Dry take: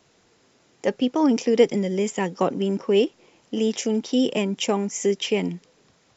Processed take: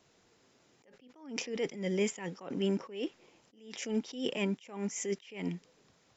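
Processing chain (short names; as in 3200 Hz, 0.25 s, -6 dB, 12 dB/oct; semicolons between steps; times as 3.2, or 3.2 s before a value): dynamic EQ 2000 Hz, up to +7 dB, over -41 dBFS, Q 0.8; attack slew limiter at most 110 dB/s; gain -6.5 dB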